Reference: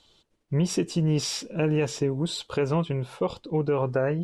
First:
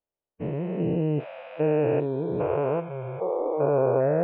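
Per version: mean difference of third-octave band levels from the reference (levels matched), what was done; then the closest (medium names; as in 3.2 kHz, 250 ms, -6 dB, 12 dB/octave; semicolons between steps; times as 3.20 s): 10.0 dB: spectrogram pixelated in time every 400 ms; spectral noise reduction 30 dB; steep low-pass 2.7 kHz 48 dB/octave; peaking EQ 640 Hz +12.5 dB 1.2 oct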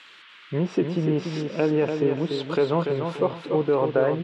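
6.5 dB: high-pass 220 Hz 12 dB/octave; low-pass that closes with the level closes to 1.7 kHz, closed at -25.5 dBFS; band noise 1.1–3.5 kHz -54 dBFS; on a send: feedback delay 290 ms, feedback 32%, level -6 dB; on the sum: trim +4 dB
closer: second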